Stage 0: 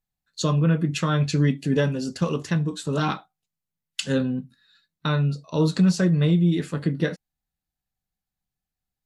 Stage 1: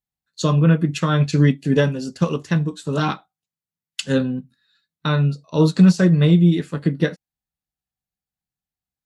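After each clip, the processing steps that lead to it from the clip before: high-pass 44 Hz; upward expansion 1.5:1, over -37 dBFS; trim +7 dB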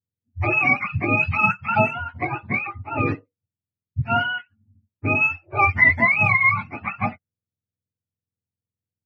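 spectrum inverted on a logarithmic axis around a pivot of 610 Hz; level-controlled noise filter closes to 700 Hz, open at -14.5 dBFS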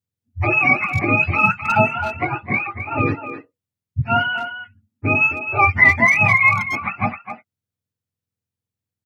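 speakerphone echo 260 ms, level -9 dB; trim +3 dB

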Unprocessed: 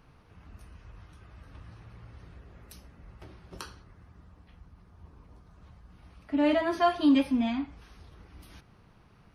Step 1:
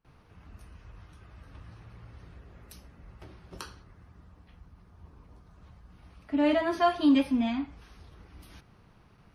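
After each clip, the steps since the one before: gate with hold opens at -50 dBFS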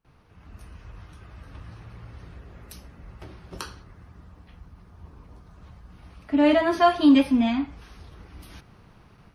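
level rider gain up to 6 dB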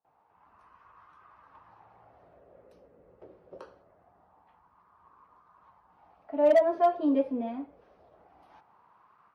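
wah-wah 0.24 Hz 490–1100 Hz, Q 4.4; hard clipper -19 dBFS, distortion -21 dB; trim +4 dB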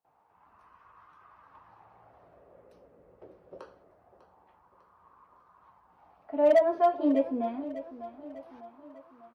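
feedback delay 599 ms, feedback 49%, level -15 dB

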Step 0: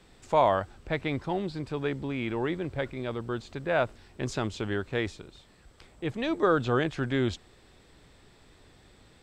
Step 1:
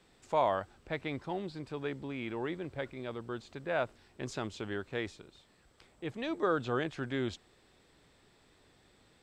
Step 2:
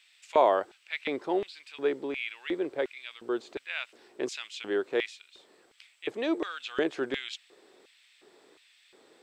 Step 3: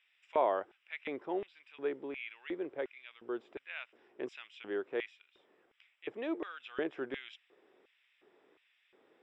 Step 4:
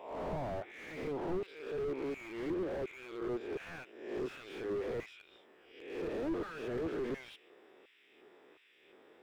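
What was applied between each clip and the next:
bass shelf 96 Hz -9 dB; trim -6 dB
LFO high-pass square 1.4 Hz 380–2500 Hz; trim +4 dB
Savitzky-Golay filter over 25 samples; trim -7.5 dB
reverse spectral sustain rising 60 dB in 0.72 s; slew-rate limiter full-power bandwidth 5.2 Hz; trim +4 dB

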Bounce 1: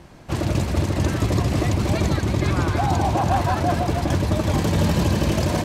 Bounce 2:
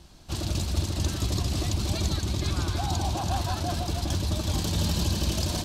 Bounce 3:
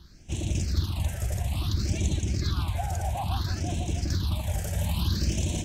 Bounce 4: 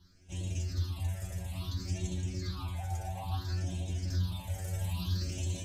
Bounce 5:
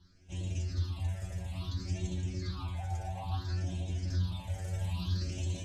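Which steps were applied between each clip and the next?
graphic EQ 125/250/500/1000/2000/4000 Hz -9/-6/-11/-6/-12/+5 dB
phase shifter stages 6, 0.59 Hz, lowest notch 280–1300 Hz
inharmonic resonator 90 Hz, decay 0.43 s, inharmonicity 0.002; trim +2 dB
distance through air 55 m

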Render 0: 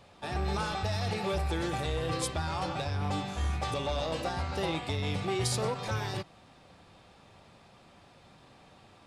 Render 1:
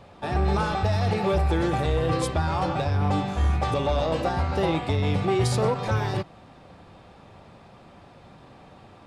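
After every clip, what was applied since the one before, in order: treble shelf 2.3 kHz -10.5 dB; trim +9 dB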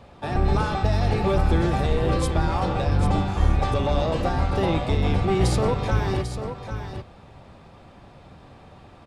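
octave divider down 1 oct, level 0 dB; on a send: delay 795 ms -9 dB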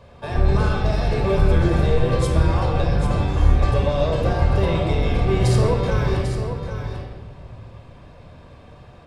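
reverberation RT60 1.5 s, pre-delay 25 ms, DRR 3 dB; trim -2 dB

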